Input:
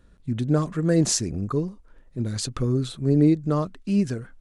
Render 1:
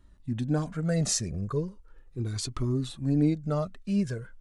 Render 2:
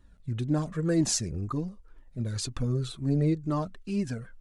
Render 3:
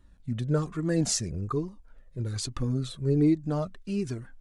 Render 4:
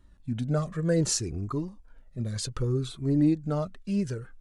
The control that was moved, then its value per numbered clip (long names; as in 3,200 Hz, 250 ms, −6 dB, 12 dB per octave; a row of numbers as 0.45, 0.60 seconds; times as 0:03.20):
flanger whose copies keep moving one way, speed: 0.38, 2, 1.2, 0.65 Hertz